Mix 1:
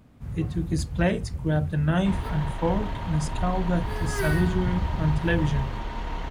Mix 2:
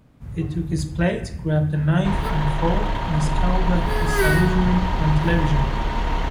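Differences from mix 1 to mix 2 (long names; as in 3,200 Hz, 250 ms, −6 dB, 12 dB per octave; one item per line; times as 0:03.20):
second sound +9.0 dB
reverb: on, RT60 0.65 s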